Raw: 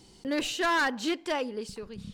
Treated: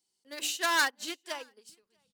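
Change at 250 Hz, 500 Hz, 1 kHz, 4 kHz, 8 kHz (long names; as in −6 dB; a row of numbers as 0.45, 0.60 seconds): −14.0, −9.5, −3.0, +0.5, +5.0 decibels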